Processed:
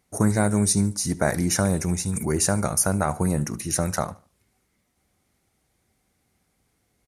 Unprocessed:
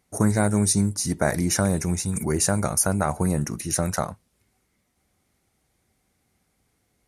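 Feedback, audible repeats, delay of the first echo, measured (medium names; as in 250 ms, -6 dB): 32%, 2, 73 ms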